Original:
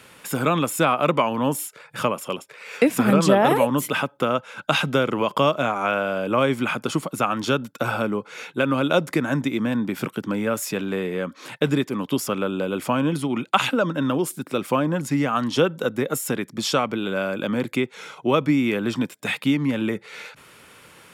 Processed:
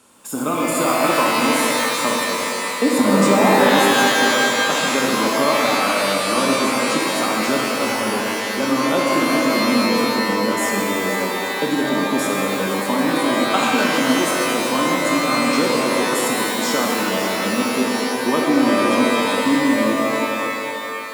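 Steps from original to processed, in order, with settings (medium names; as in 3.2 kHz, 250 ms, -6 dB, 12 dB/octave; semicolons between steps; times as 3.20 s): chunks repeated in reverse 320 ms, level -11 dB; graphic EQ 125/250/1000/2000/8000 Hz -8/+9/+7/-9/+10 dB; in parallel at -10 dB: bit crusher 5-bit; on the sum: pitch-shifted reverb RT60 3 s, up +12 st, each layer -2 dB, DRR -2 dB; trim -8.5 dB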